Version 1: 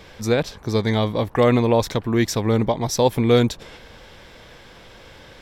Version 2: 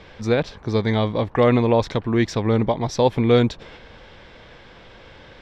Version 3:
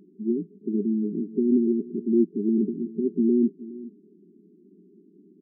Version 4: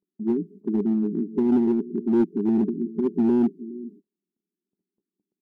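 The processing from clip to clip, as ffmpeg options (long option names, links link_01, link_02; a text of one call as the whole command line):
ffmpeg -i in.wav -af "lowpass=4000" out.wav
ffmpeg -i in.wav -af "aecho=1:1:416:0.126,afftfilt=real='re*between(b*sr/4096,170,420)':imag='im*between(b*sr/4096,170,420)':win_size=4096:overlap=0.75" out.wav
ffmpeg -i in.wav -filter_complex "[0:a]agate=range=-38dB:threshold=-48dB:ratio=16:detection=peak,asplit=2[link_01][link_02];[link_02]aeval=exprs='0.0891*(abs(mod(val(0)/0.0891+3,4)-2)-1)':channel_layout=same,volume=-9.5dB[link_03];[link_01][link_03]amix=inputs=2:normalize=0" out.wav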